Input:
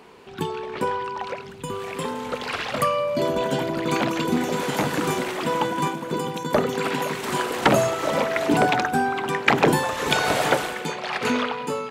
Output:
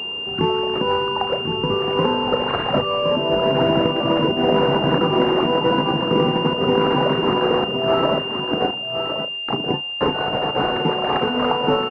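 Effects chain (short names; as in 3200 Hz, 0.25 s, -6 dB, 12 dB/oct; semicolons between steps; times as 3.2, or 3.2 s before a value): 8.18–10.01 gate -15 dBFS, range -33 dB; negative-ratio compressor -25 dBFS, ratio -0.5; air absorption 180 m; doubler 35 ms -10.5 dB; echo 1.066 s -7 dB; pulse-width modulation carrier 2800 Hz; gain +8 dB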